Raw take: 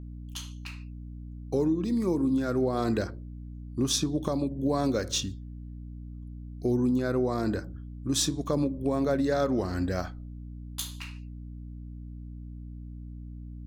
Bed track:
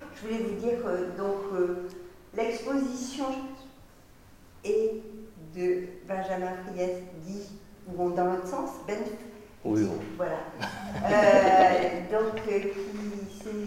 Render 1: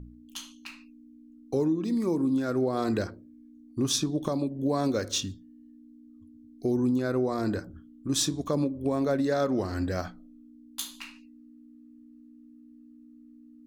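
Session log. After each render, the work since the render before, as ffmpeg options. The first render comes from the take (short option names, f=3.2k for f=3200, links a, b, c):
-af "bandreject=f=60:t=h:w=4,bandreject=f=120:t=h:w=4,bandreject=f=180:t=h:w=4"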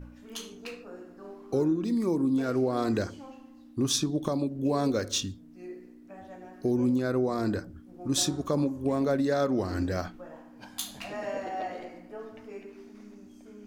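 -filter_complex "[1:a]volume=-15.5dB[a];[0:a][a]amix=inputs=2:normalize=0"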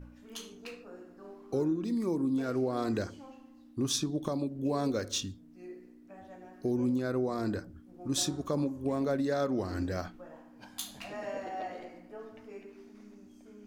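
-af "volume=-4dB"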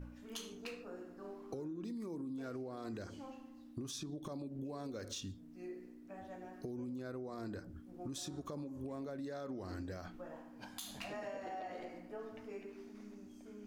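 -af "alimiter=level_in=4.5dB:limit=-24dB:level=0:latency=1:release=111,volume=-4.5dB,acompressor=threshold=-41dB:ratio=6"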